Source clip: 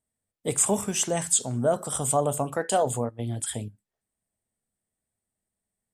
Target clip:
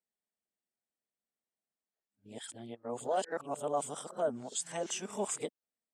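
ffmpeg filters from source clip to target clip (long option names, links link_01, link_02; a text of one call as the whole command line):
ffmpeg -i in.wav -filter_complex "[0:a]areverse,acrossover=split=210 7200:gain=0.0891 1 0.126[link_01][link_02][link_03];[link_01][link_02][link_03]amix=inputs=3:normalize=0,volume=-8.5dB" out.wav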